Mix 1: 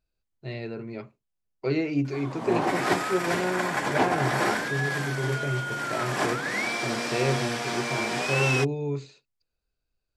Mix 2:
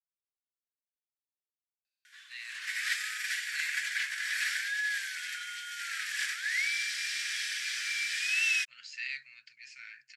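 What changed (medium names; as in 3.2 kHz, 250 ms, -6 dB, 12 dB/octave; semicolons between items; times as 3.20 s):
speech: entry +1.85 s; master: add elliptic high-pass 1.7 kHz, stop band 50 dB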